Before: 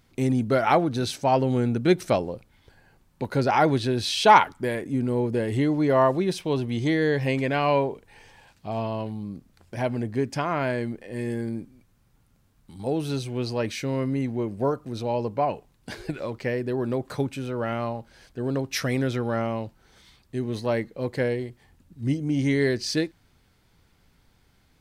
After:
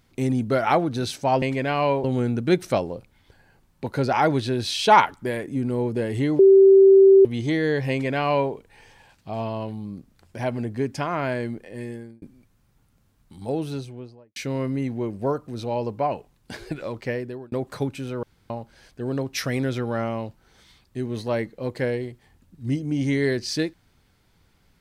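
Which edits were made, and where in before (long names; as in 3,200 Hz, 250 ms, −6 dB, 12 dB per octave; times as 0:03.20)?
0:05.77–0:06.63: beep over 388 Hz −8.5 dBFS
0:07.28–0:07.90: duplicate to 0:01.42
0:11.03–0:11.60: fade out
0:12.84–0:13.74: fade out and dull
0:16.49–0:16.90: fade out
0:17.61–0:17.88: fill with room tone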